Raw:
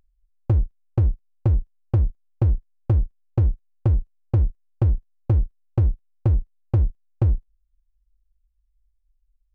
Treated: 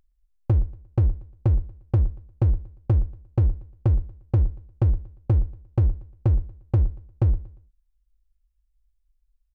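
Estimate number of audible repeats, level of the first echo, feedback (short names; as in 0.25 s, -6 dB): 2, -19.0 dB, 33%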